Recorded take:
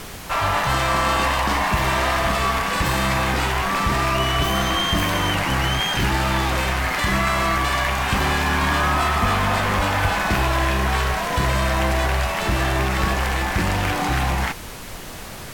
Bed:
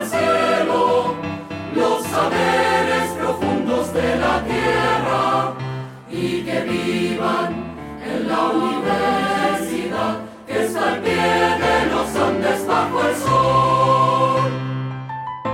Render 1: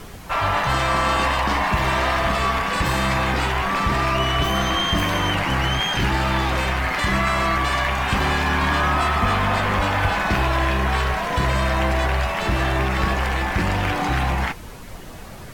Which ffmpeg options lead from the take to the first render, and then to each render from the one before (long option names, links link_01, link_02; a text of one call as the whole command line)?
ffmpeg -i in.wav -af "afftdn=noise_reduction=8:noise_floor=-35" out.wav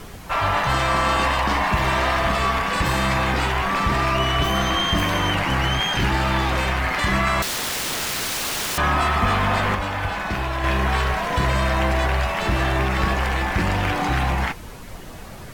ffmpeg -i in.wav -filter_complex "[0:a]asettb=1/sr,asplit=3[link_01][link_02][link_03];[link_01]atrim=end=7.424[link_04];[link_02]atrim=start=7.42:end=8.78,asetpts=PTS-STARTPTS,afade=type=in:duration=0.004:curve=qsin,afade=type=out:start_time=1.356:duration=0.004:curve=qsin,aeval=exprs='(mod(11.2*val(0)+1,2)-1)/11.2':channel_layout=same[link_05];[link_03]atrim=start=8.776[link_06];[link_04][link_05]acrossfade=duration=0.004:curve1=hsin:curve2=qsin[link_07];[link_07][link_06]acrossfade=duration=0.004:curve1=qsin:curve2=hsin,asplit=3[link_08][link_09][link_10];[link_08]atrim=end=9.752[link_11];[link_09]atrim=start=9.748:end=10.642,asetpts=PTS-STARTPTS,volume=-5dB[link_12];[link_10]atrim=start=10.638[link_13];[link_11][link_12]acrossfade=duration=0.004:curve1=hsin:curve2=hsin[link_14];[link_14][link_13]acrossfade=duration=0.004:curve1=hsin:curve2=hsin" out.wav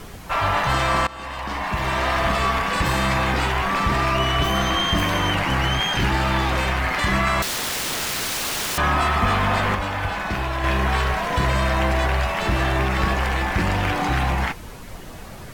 ffmpeg -i in.wav -filter_complex "[0:a]asplit=2[link_01][link_02];[link_01]atrim=end=1.07,asetpts=PTS-STARTPTS,afade=type=out:start_time=1.066:duration=0.004:curve=hsin:silence=0.0944061[link_03];[link_02]atrim=start=1.07,asetpts=PTS-STARTPTS,afade=type=in:duration=1.16:silence=0.0944061[link_04];[link_03][link_04]concat=n=2:v=0:a=1" out.wav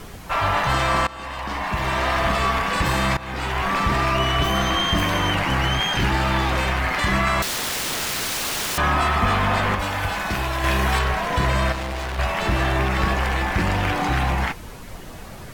ffmpeg -i in.wav -filter_complex "[0:a]asettb=1/sr,asplit=3[link_01][link_02][link_03];[link_01]atrim=end=9.794[link_04];[link_02]atrim=start=9.79:end=10.99,asetpts=PTS-STARTPTS,afade=type=in:duration=0.004:curve=qsin,afade=type=out:start_time=1.196:duration=0.004:curve=qsin,highshelf=frequency=5100:gain=10.5[link_05];[link_03]atrim=start=10.986[link_06];[link_04][link_05]acrossfade=duration=0.004:curve1=hsin:curve2=qsin[link_07];[link_07][link_06]acrossfade=duration=0.004:curve1=qsin:curve2=hsin,asettb=1/sr,asplit=3[link_08][link_09][link_10];[link_08]atrim=end=11.724[link_11];[link_09]atrim=start=11.72:end=12.19,asetpts=PTS-STARTPTS,afade=type=in:duration=0.004:curve=qsin,afade=type=out:start_time=0.466:duration=0.004:curve=qsin,asoftclip=type=hard:threshold=-26dB[link_12];[link_10]atrim=start=12.186[link_13];[link_11][link_12]acrossfade=duration=0.004:curve1=hsin:curve2=qsin[link_14];[link_14][link_13]acrossfade=duration=0.004:curve1=qsin:curve2=hsin,asplit=2[link_15][link_16];[link_15]atrim=end=3.17,asetpts=PTS-STARTPTS,afade=type=out:start_time=3.166:duration=0.004:curve=hsin:silence=0.125893[link_17];[link_16]atrim=start=3.17,asetpts=PTS-STARTPTS,afade=type=in:duration=0.5:silence=0.125893[link_18];[link_17][link_18]concat=n=2:v=0:a=1" out.wav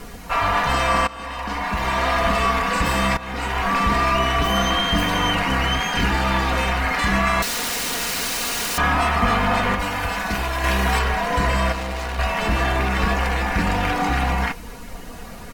ffmpeg -i in.wav -af "bandreject=frequency=3400:width=17,aecho=1:1:4.2:0.54" out.wav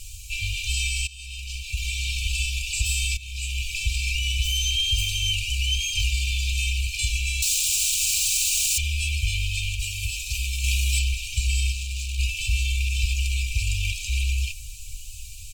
ffmpeg -i in.wav -af "equalizer=frequency=7500:width_type=o:width=0.48:gain=10,afftfilt=real='re*(1-between(b*sr/4096,110,2300))':imag='im*(1-between(b*sr/4096,110,2300))':win_size=4096:overlap=0.75" out.wav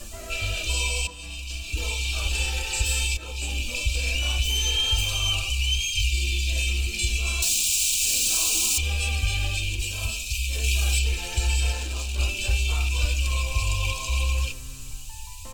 ffmpeg -i in.wav -i bed.wav -filter_complex "[1:a]volume=-24dB[link_01];[0:a][link_01]amix=inputs=2:normalize=0" out.wav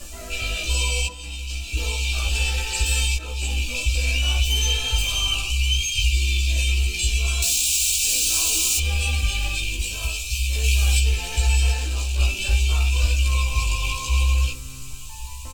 ffmpeg -i in.wav -filter_complex "[0:a]asplit=2[link_01][link_02];[link_02]adelay=16,volume=-2dB[link_03];[link_01][link_03]amix=inputs=2:normalize=0,aecho=1:1:1107|2214|3321:0.0631|0.029|0.0134" out.wav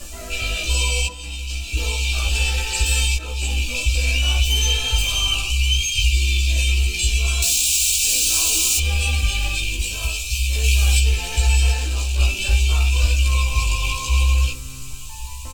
ffmpeg -i in.wav -af "volume=2.5dB" out.wav